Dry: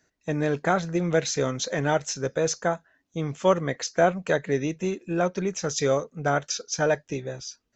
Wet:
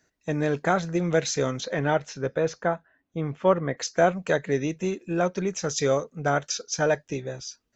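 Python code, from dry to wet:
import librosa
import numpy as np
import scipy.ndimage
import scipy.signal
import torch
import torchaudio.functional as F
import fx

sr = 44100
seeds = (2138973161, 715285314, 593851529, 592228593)

y = fx.lowpass(x, sr, hz=fx.line((1.6, 4000.0), (3.76, 2000.0)), slope=12, at=(1.6, 3.76), fade=0.02)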